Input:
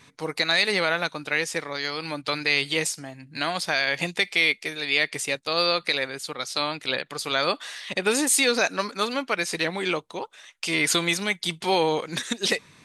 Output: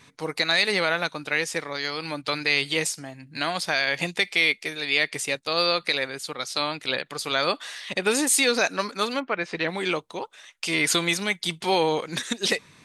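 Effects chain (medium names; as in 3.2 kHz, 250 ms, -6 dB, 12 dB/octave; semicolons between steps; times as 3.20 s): 9.19–9.67 s: low-pass 1.6 kHz -> 3.6 kHz 12 dB/octave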